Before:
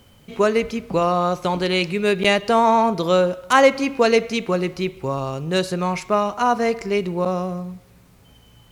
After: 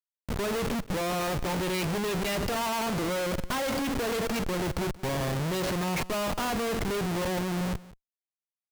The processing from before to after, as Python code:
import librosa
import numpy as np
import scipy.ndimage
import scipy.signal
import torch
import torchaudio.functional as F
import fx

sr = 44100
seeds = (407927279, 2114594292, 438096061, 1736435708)

y = fx.schmitt(x, sr, flips_db=-31.0)
y = y + 10.0 ** (-19.5 / 20.0) * np.pad(y, (int(178 * sr / 1000.0), 0))[:len(y)]
y = F.gain(torch.from_numpy(y), -8.5).numpy()